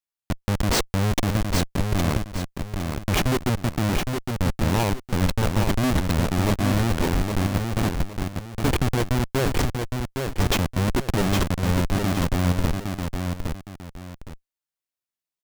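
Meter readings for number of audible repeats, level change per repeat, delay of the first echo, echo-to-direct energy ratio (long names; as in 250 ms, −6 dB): 2, −10.5 dB, 813 ms, −4.5 dB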